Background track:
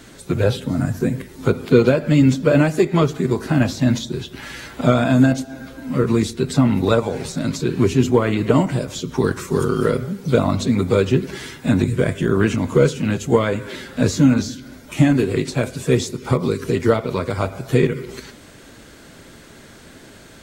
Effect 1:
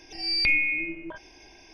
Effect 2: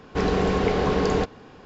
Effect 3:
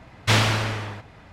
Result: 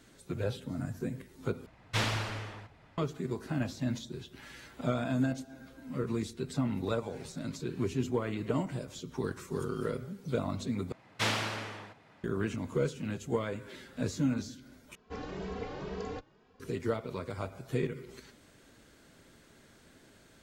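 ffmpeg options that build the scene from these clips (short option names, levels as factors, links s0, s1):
-filter_complex "[3:a]asplit=2[s0][s1];[0:a]volume=0.158[s2];[s0]flanger=delay=0.6:depth=8:regen=-44:speed=2:shape=triangular[s3];[s1]highpass=160[s4];[2:a]asplit=2[s5][s6];[s6]adelay=2.7,afreqshift=2.1[s7];[s5][s7]amix=inputs=2:normalize=1[s8];[s2]asplit=4[s9][s10][s11][s12];[s9]atrim=end=1.664[s13];[s3]atrim=end=1.32,asetpts=PTS-STARTPTS,volume=0.422[s14];[s10]atrim=start=2.976:end=10.924[s15];[s4]atrim=end=1.32,asetpts=PTS-STARTPTS,volume=0.316[s16];[s11]atrim=start=12.236:end=14.954[s17];[s8]atrim=end=1.65,asetpts=PTS-STARTPTS,volume=0.188[s18];[s12]atrim=start=16.596[s19];[s13][s14]acrossfade=d=0.004:c1=hsin:c2=hsin[s20];[s20][s15]acrossfade=d=0.004:c1=hsin:c2=hsin[s21];[s21][s16]acrossfade=d=0.004:c1=hsin:c2=hsin[s22];[s22][s17]acrossfade=d=0.004:c1=hsin:c2=hsin[s23];[s23][s18]acrossfade=d=0.004:c1=hsin:c2=hsin[s24];[s24][s19]acrossfade=d=0.004:c1=hsin:c2=hsin"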